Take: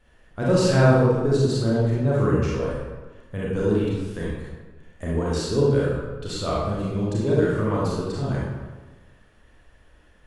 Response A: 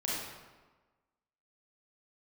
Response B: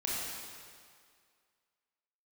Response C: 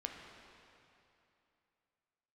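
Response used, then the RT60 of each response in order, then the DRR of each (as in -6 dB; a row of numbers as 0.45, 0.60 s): A; 1.3, 2.1, 2.8 s; -6.5, -6.0, 1.5 dB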